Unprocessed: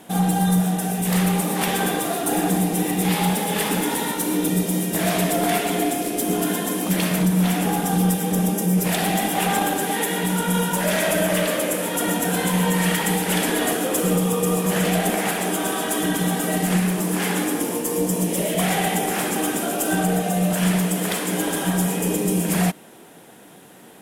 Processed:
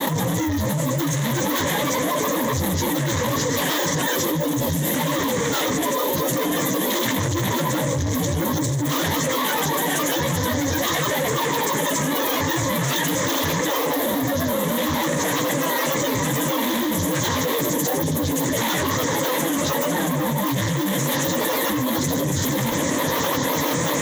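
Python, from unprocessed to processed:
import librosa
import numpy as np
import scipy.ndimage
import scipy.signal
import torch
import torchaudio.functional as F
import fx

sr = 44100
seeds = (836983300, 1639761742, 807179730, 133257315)

y = np.clip(10.0 ** (22.0 / 20.0) * x, -1.0, 1.0) / 10.0 ** (22.0 / 20.0)
y = scipy.signal.sosfilt(scipy.signal.butter(2, 62.0, 'highpass', fs=sr, output='sos'), y)
y = fx.low_shelf(y, sr, hz=100.0, db=-7.0)
y = fx.granulator(y, sr, seeds[0], grain_ms=100.0, per_s=24.0, spray_ms=100.0, spread_st=12)
y = fx.ripple_eq(y, sr, per_octave=1.1, db=10)
y = fx.env_flatten(y, sr, amount_pct=100)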